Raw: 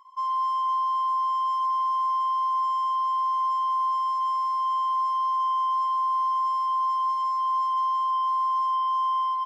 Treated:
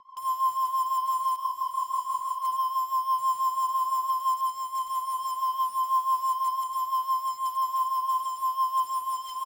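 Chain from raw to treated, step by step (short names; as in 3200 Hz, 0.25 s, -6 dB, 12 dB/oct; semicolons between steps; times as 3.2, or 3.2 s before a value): on a send: diffused feedback echo 0.915 s, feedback 60%, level -15 dB; on the sum: vocal rider 2 s; Bessel low-pass 2500 Hz, order 2; bell 1900 Hz -12.5 dB 1.6 oct; outdoor echo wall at 39 m, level -8 dB; in parallel at -5 dB: wrapped overs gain 39 dB; on the sum: rotary speaker horn 6 Hz; 1.36–2.45 detuned doubles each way 51 cents; gain +5.5 dB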